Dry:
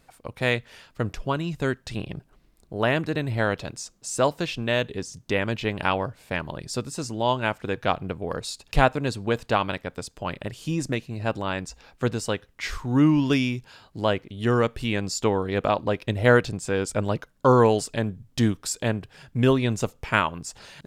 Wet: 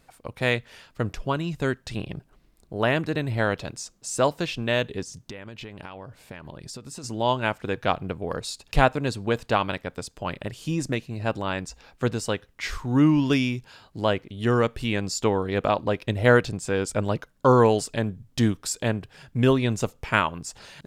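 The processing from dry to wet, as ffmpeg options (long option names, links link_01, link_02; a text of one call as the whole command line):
ffmpeg -i in.wav -filter_complex "[0:a]asplit=3[link_01][link_02][link_03];[link_01]afade=type=out:start_time=5.03:duration=0.02[link_04];[link_02]acompressor=threshold=-34dB:ratio=16:attack=3.2:release=140:knee=1:detection=peak,afade=type=in:start_time=5.03:duration=0.02,afade=type=out:start_time=7.03:duration=0.02[link_05];[link_03]afade=type=in:start_time=7.03:duration=0.02[link_06];[link_04][link_05][link_06]amix=inputs=3:normalize=0" out.wav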